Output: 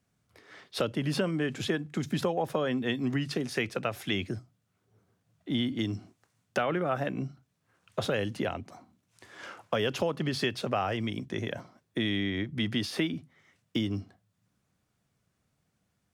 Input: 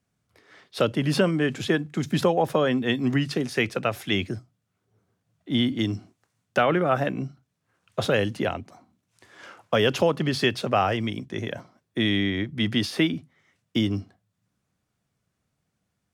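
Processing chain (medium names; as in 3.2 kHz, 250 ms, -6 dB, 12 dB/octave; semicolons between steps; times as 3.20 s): compression 2:1, threshold -33 dBFS, peak gain reduction 10 dB; trim +1 dB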